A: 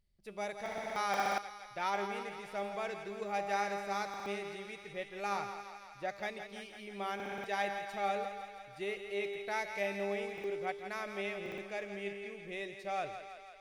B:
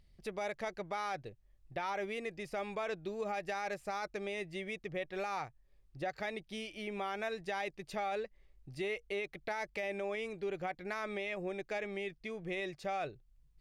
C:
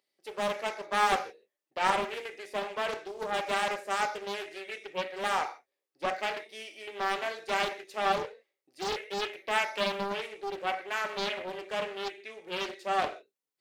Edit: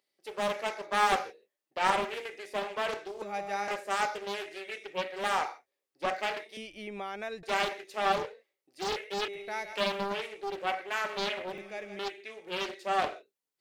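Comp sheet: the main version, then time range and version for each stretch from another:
C
3.22–3.68 from A
6.57–7.43 from B
9.28–9.73 from A
11.53–11.99 from A

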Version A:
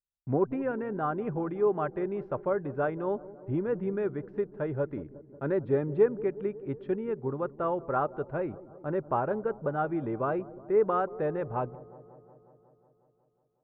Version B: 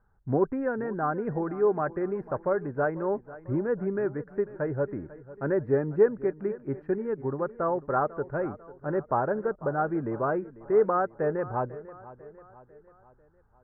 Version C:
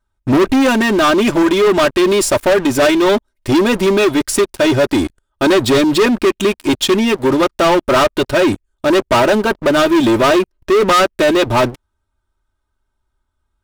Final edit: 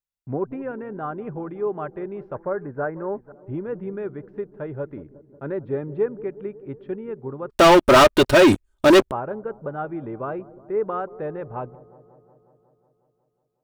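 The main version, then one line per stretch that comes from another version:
A
2.35–3.32 from B
7.5–9.11 from C

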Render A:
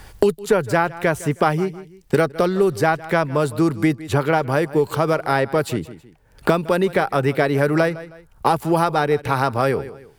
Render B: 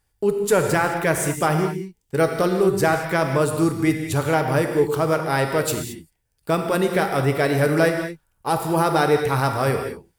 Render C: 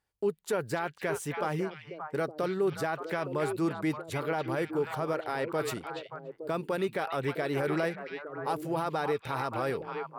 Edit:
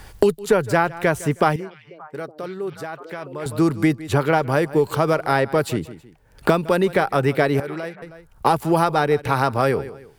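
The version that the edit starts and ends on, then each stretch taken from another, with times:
A
1.56–3.46 from C
7.6–8.02 from C
not used: B

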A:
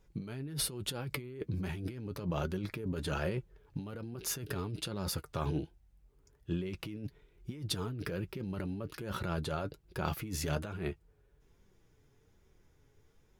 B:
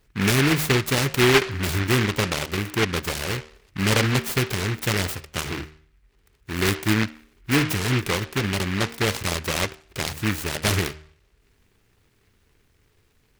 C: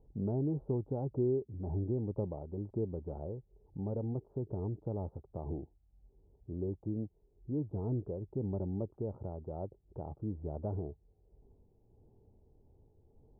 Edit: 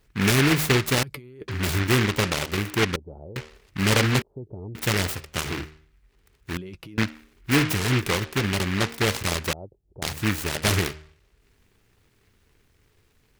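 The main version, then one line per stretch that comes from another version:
B
1.03–1.48 from A
2.96–3.36 from C
4.22–4.75 from C
6.57–6.98 from A
9.53–10.02 from C

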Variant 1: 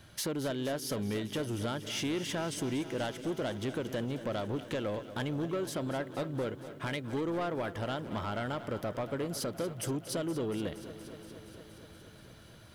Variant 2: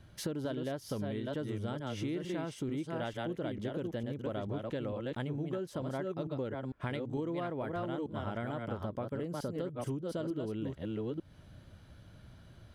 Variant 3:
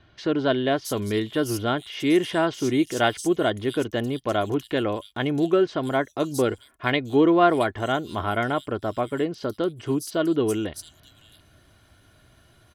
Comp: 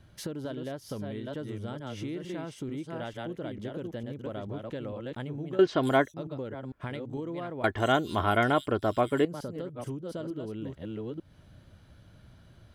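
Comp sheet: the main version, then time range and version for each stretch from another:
2
5.59–6.14 from 3
7.64–9.25 from 3
not used: 1

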